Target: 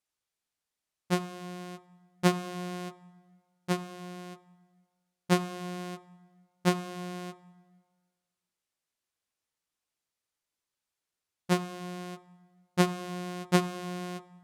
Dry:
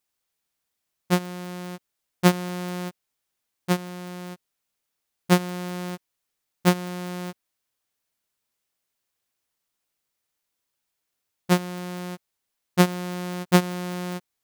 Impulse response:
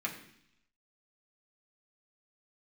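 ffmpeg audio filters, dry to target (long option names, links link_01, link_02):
-filter_complex "[0:a]lowpass=11000,asplit=2[link_01][link_02];[1:a]atrim=start_sample=2205,asetrate=22491,aresample=44100,adelay=14[link_03];[link_02][link_03]afir=irnorm=-1:irlink=0,volume=-18dB[link_04];[link_01][link_04]amix=inputs=2:normalize=0,volume=-6dB"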